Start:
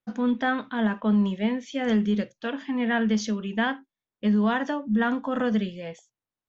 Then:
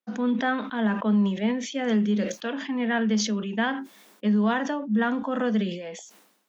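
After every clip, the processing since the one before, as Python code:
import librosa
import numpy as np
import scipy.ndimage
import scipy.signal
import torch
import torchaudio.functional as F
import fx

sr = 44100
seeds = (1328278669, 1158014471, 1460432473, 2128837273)

y = scipy.signal.sosfilt(scipy.signal.ellip(4, 1.0, 40, 190.0, 'highpass', fs=sr, output='sos'), x)
y = fx.sustainer(y, sr, db_per_s=69.0)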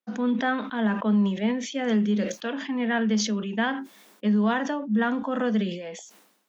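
y = x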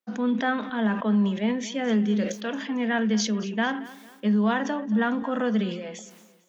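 y = fx.echo_feedback(x, sr, ms=225, feedback_pct=39, wet_db=-18)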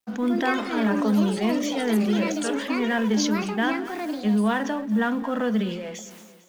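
y = fx.law_mismatch(x, sr, coded='mu')
y = fx.echo_pitch(y, sr, ms=168, semitones=6, count=3, db_per_echo=-6.0)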